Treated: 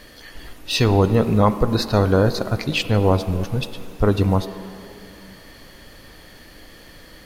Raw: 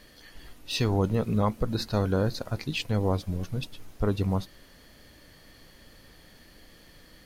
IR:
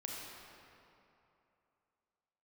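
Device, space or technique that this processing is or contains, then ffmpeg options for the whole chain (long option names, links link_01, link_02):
filtered reverb send: -filter_complex "[0:a]asplit=2[link_01][link_02];[link_02]highpass=frequency=170:width=0.5412,highpass=frequency=170:width=1.3066,lowpass=3500[link_03];[1:a]atrim=start_sample=2205[link_04];[link_03][link_04]afir=irnorm=-1:irlink=0,volume=-8dB[link_05];[link_01][link_05]amix=inputs=2:normalize=0,volume=8.5dB"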